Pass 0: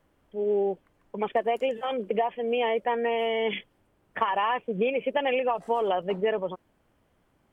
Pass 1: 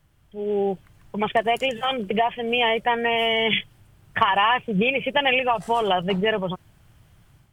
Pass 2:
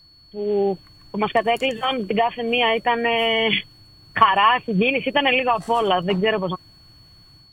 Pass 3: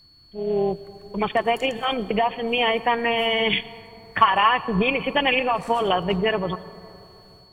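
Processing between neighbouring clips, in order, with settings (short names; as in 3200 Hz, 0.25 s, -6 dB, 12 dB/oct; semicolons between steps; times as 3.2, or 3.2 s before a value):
graphic EQ 125/250/500/1000/2000 Hz +8/-11/-12/-6/-4 dB; AGC gain up to 7.5 dB; gain +8 dB
small resonant body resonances 300/1100 Hz, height 8 dB; whine 4400 Hz -51 dBFS; gain +1.5 dB
reverb RT60 3.1 s, pre-delay 77 ms, DRR 16.5 dB; AM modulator 240 Hz, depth 30%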